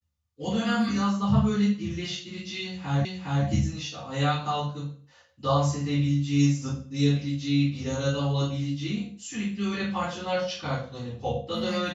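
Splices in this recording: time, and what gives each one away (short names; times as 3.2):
3.05 repeat of the last 0.41 s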